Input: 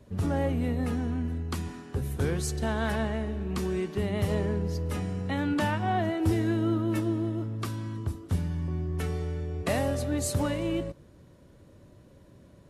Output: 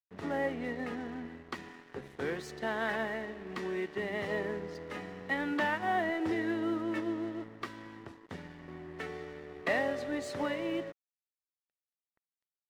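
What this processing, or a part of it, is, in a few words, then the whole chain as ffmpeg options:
pocket radio on a weak battery: -af "highpass=310,lowpass=3700,aeval=exprs='sgn(val(0))*max(abs(val(0))-0.00335,0)':c=same,equalizer=f=1900:t=o:w=0.2:g=10,volume=0.841"

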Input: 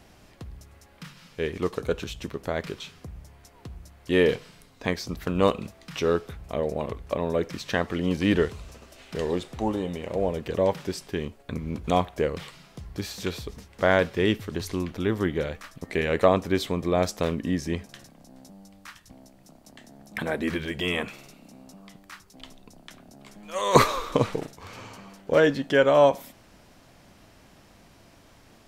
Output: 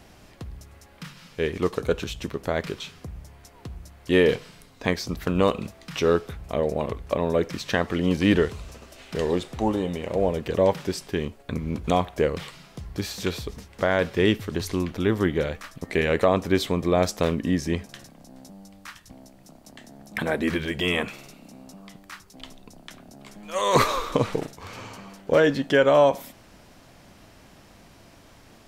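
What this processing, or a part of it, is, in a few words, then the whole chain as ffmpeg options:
clipper into limiter: -af "asoftclip=type=hard:threshold=0.531,alimiter=limit=0.266:level=0:latency=1:release=114,volume=1.41"

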